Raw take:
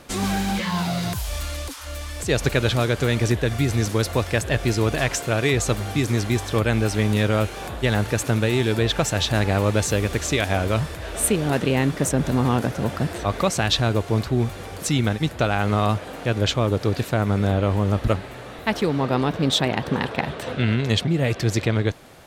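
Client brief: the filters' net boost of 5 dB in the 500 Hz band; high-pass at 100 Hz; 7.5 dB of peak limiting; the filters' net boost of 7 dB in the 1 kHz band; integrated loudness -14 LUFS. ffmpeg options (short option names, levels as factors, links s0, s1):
-af "highpass=100,equalizer=f=500:t=o:g=4,equalizer=f=1000:t=o:g=8,volume=2.51,alimiter=limit=1:level=0:latency=1"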